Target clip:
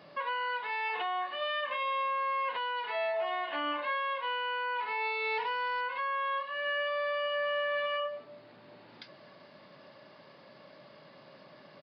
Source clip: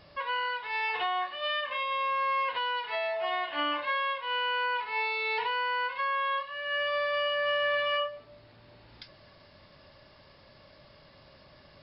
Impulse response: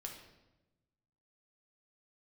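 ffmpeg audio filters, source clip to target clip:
-filter_complex "[0:a]highpass=frequency=160:width=0.5412,highpass=frequency=160:width=1.3066,highshelf=frequency=3200:gain=-9,alimiter=level_in=5dB:limit=-24dB:level=0:latency=1:release=96,volume=-5dB,asettb=1/sr,asplit=3[link_01][link_02][link_03];[link_01]atrim=end=5.244[link_04];[link_02]atrim=start=5.24:end=5.81,asetpts=PTS-STARTPTS,afade=type=in:duration=0.004:curve=qsin,afade=type=out:start_time=0.566:duration=0.004:curve=qsin,acrusher=bits=4:mode=log:mix=0:aa=0.000001[link_05];[link_03]atrim=start=5.806[link_06];[link_04][link_05]acrossfade=duration=0.004:curve1=hsin:curve2=qsin[link_07];[link_07][link_06]acrossfade=duration=0.004:curve1=qsin:curve2=hsin,aresample=11025,aresample=44100,volume=3.5dB"

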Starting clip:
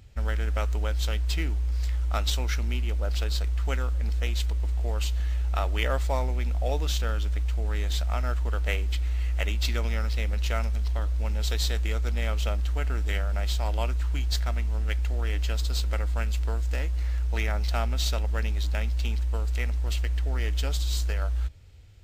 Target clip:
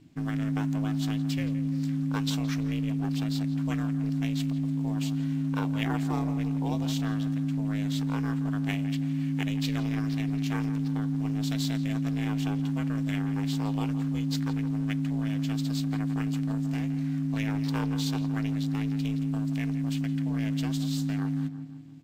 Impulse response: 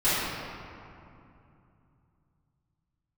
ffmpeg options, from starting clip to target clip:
-filter_complex "[0:a]asplit=2[link_01][link_02];[link_02]adelay=168,lowpass=frequency=2100:poles=1,volume=-11dB,asplit=2[link_03][link_04];[link_04]adelay=168,lowpass=frequency=2100:poles=1,volume=0.54,asplit=2[link_05][link_06];[link_06]adelay=168,lowpass=frequency=2100:poles=1,volume=0.54,asplit=2[link_07][link_08];[link_08]adelay=168,lowpass=frequency=2100:poles=1,volume=0.54,asplit=2[link_09][link_10];[link_10]adelay=168,lowpass=frequency=2100:poles=1,volume=0.54,asplit=2[link_11][link_12];[link_12]adelay=168,lowpass=frequency=2100:poles=1,volume=0.54[link_13];[link_01][link_03][link_05][link_07][link_09][link_11][link_13]amix=inputs=7:normalize=0,aeval=exprs='val(0)*sin(2*PI*210*n/s)':channel_layout=same,volume=-2dB"

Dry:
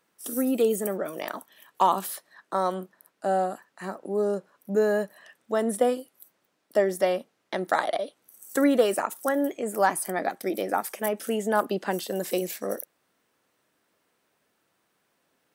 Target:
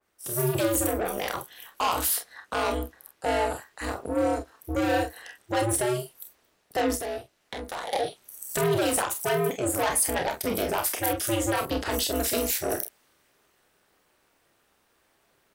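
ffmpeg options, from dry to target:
ffmpeg -i in.wav -filter_complex "[0:a]alimiter=limit=-15dB:level=0:latency=1:release=115,asoftclip=type=tanh:threshold=-26.5dB,asettb=1/sr,asplit=3[link_01][link_02][link_03];[link_01]atrim=end=6.954[link_04];[link_02]atrim=start=6.95:end=7.92,asetpts=PTS-STARTPTS,afade=type=in:duration=0.004:curve=qsin,afade=type=out:start_time=0.966:duration=0.004:curve=qsin,acompressor=threshold=-52dB:ratio=1.5[link_05];[link_03]atrim=start=7.916[link_06];[link_04][link_05]acrossfade=duration=0.004:curve1=hsin:curve2=qsin[link_07];[link_07][link_06]acrossfade=duration=0.004:curve1=qsin:curve2=hsin,aeval=exprs='val(0)*sin(2*PI*120*n/s)':channel_layout=same,equalizer=frequency=170:width=1.5:gain=-2.5,aecho=1:1:30|45:0.398|0.355,dynaudnorm=framelen=190:gausssize=3:maxgain=7dB,adynamicequalizer=threshold=0.00631:dfrequency=2100:dqfactor=0.7:tfrequency=2100:tqfactor=0.7:attack=5:release=100:ratio=0.375:range=3:mode=boostabove:tftype=highshelf" out.wav

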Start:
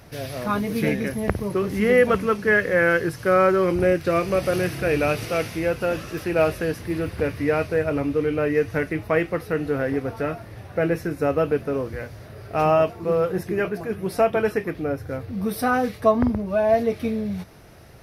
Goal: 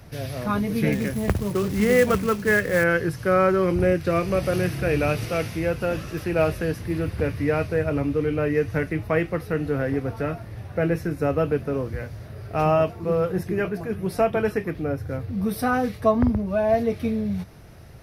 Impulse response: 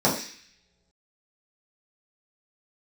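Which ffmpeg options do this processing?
-filter_complex "[0:a]acrossover=split=190[link_01][link_02];[link_01]acontrast=63[link_03];[link_03][link_02]amix=inputs=2:normalize=0,asettb=1/sr,asplit=3[link_04][link_05][link_06];[link_04]atrim=end=0.924[link_07];[link_05]atrim=start=0.92:end=2.84,asetpts=PTS-STARTPTS,afade=type=in:duration=0.004:curve=qsin,afade=type=out:start_time=1.916:duration=0.004:curve=qsin,acrusher=bits=4:mode=log:mix=0:aa=0.000001[link_08];[link_06]atrim=start=2.836[link_09];[link_07][link_08]acrossfade=duration=0.004:curve1=hsin:curve2=qsin[link_10];[link_10][link_09]acrossfade=duration=0.004:curve1=qsin:curve2=hsin,volume=-2dB"

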